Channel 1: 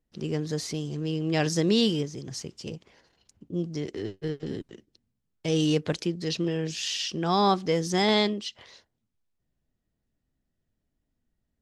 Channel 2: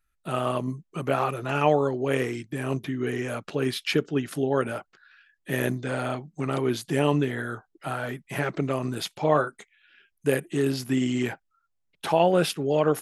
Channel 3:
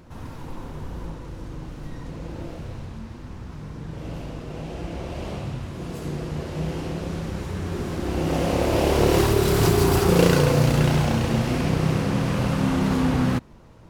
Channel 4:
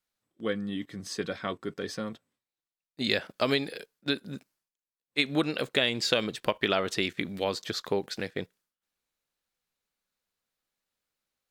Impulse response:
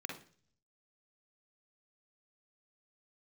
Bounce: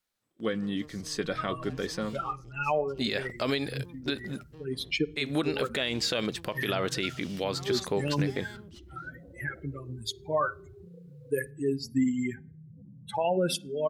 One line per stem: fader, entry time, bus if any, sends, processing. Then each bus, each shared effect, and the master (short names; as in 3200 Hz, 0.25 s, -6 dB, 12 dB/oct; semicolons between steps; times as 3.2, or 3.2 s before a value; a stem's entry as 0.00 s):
-16.0 dB, 0.30 s, send -15 dB, tube stage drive 30 dB, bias 0.75
+2.5 dB, 1.05 s, send -17.5 dB, per-bin expansion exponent 3
-18.0 dB, 0.75 s, no send, spectral contrast raised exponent 3.3; compressor 6:1, threshold -30 dBFS, peak gain reduction 15.5 dB
+2.0 dB, 0.00 s, no send, dry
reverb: on, RT60 0.45 s, pre-delay 44 ms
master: limiter -18 dBFS, peak gain reduction 10.5 dB